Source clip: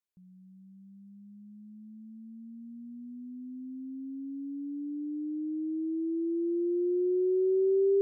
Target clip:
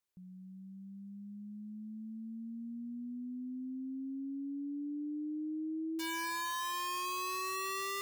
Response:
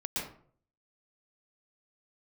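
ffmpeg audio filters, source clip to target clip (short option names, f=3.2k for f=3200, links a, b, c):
-af "acompressor=threshold=-45dB:ratio=2.5,aeval=exprs='(mod(79.4*val(0)+1,2)-1)/79.4':c=same,volume=3.5dB"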